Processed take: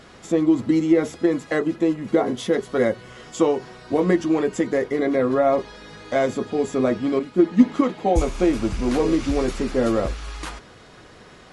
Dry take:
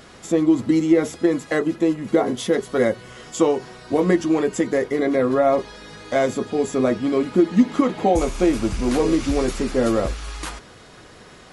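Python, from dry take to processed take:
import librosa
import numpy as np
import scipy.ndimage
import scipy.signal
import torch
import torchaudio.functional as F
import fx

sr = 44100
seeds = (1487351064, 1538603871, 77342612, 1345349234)

y = fx.high_shelf(x, sr, hz=8500.0, db=-9.5)
y = fx.band_widen(y, sr, depth_pct=100, at=(7.19, 8.22))
y = F.gain(torch.from_numpy(y), -1.0).numpy()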